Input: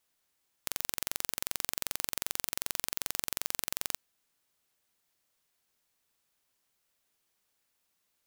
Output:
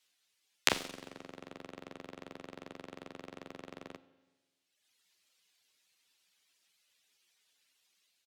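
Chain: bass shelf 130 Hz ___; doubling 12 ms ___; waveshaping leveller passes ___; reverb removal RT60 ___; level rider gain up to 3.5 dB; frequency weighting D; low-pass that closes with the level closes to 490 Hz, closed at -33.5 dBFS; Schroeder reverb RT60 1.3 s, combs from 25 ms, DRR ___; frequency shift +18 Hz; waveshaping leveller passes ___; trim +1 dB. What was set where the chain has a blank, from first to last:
+4 dB, -3 dB, 1, 1.1 s, 10 dB, 2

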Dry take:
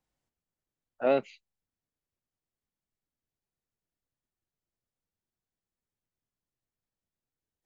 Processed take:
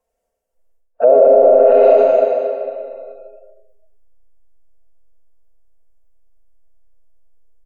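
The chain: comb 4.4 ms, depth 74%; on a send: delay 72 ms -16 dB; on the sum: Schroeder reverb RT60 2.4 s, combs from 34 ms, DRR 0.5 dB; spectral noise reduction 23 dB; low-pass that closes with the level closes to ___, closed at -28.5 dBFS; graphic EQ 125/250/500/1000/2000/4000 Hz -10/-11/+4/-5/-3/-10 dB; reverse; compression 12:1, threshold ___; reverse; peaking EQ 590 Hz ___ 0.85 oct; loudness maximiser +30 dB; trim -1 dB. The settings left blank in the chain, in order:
850 Hz, -40 dBFS, +13.5 dB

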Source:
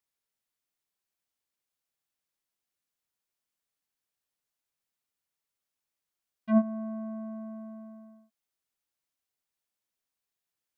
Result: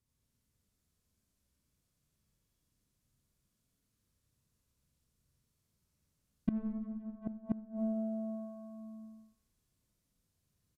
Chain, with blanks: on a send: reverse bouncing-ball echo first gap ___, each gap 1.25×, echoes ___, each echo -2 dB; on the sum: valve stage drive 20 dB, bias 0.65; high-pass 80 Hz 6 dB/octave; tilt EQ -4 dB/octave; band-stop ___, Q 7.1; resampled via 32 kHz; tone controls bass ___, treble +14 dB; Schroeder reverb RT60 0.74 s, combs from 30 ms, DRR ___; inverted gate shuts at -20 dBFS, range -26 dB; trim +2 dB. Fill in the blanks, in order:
90 ms, 6, 790 Hz, +13 dB, 2 dB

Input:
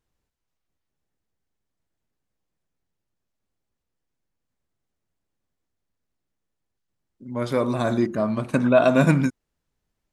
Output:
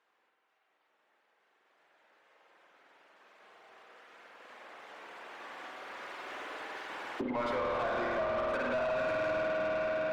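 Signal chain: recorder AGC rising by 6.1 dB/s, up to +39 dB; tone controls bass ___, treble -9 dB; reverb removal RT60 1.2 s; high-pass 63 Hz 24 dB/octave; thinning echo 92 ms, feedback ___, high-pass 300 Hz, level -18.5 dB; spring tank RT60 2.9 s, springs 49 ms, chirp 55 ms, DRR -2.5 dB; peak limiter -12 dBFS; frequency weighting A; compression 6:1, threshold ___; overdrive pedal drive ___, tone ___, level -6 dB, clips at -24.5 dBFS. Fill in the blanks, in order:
-10 dB, 82%, -35 dBFS, 21 dB, 1.6 kHz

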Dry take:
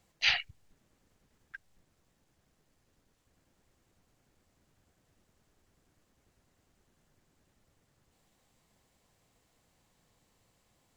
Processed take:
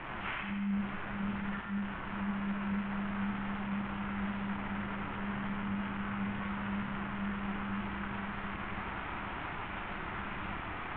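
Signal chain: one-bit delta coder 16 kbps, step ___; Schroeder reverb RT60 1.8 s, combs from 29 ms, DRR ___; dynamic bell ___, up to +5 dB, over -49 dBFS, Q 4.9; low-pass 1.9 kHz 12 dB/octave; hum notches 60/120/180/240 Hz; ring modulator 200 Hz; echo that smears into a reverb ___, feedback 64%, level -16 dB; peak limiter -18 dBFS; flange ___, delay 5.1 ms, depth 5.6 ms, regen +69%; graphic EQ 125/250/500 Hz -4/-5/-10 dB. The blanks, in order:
-25 dBFS, 0 dB, 1.2 kHz, 496 ms, 2 Hz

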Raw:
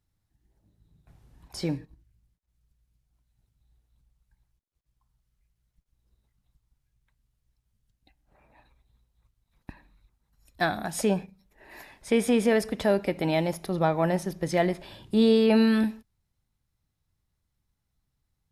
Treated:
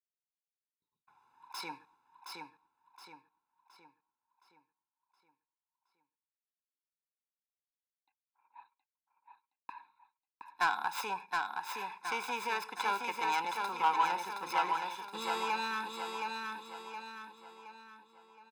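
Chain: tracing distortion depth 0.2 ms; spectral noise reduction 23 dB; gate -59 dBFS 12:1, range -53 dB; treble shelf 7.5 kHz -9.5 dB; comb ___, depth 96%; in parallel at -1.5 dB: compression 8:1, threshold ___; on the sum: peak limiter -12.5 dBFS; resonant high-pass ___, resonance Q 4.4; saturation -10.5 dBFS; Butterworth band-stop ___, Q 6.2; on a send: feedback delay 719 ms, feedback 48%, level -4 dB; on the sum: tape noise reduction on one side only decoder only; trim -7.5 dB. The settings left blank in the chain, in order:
0.8 ms, -33 dBFS, 940 Hz, 1.2 kHz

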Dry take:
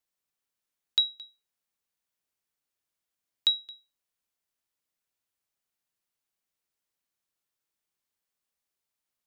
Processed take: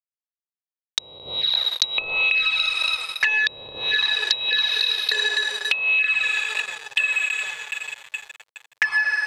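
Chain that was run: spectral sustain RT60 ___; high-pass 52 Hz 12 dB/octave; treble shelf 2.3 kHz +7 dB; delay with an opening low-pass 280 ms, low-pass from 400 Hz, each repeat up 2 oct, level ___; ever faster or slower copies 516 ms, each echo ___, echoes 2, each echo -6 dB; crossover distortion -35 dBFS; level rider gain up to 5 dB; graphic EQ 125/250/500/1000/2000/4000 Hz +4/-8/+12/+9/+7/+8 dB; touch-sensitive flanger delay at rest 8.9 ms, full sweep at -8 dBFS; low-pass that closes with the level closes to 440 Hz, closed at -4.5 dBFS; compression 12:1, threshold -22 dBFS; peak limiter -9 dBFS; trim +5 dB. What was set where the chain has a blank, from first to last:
1.96 s, 0 dB, -7 st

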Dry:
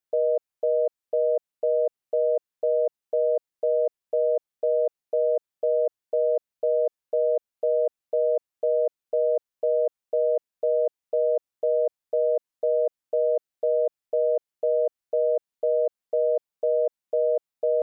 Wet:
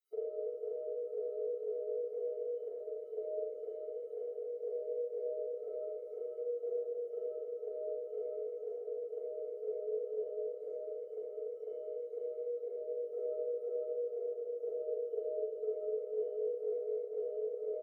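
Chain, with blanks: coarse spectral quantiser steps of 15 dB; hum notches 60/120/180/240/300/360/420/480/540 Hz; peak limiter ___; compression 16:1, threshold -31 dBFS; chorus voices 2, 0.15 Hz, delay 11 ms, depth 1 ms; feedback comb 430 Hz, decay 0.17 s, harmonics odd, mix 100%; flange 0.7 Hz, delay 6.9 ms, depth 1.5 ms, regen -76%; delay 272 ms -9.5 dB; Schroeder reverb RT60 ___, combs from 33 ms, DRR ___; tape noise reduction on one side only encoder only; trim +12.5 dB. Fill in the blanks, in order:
-19.5 dBFS, 1.8 s, -10 dB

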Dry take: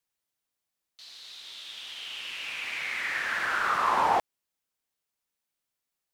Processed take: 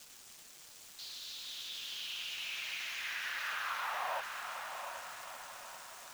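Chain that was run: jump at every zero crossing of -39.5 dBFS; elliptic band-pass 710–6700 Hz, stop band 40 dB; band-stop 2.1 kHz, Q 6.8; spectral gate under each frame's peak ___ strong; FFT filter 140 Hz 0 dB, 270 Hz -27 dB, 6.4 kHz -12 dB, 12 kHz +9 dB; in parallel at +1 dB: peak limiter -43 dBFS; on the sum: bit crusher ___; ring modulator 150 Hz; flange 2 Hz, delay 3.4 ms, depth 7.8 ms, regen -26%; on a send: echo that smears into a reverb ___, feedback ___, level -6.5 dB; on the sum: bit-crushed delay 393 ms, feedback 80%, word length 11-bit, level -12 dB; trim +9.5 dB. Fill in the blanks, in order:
-30 dB, 9-bit, 724 ms, 46%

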